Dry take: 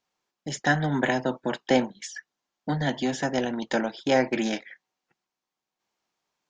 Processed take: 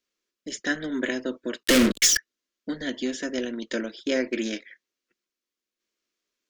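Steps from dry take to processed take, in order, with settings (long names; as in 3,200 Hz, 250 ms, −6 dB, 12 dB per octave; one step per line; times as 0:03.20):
0:01.63–0:02.17: fuzz pedal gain 42 dB, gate −47 dBFS
phaser with its sweep stopped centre 340 Hz, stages 4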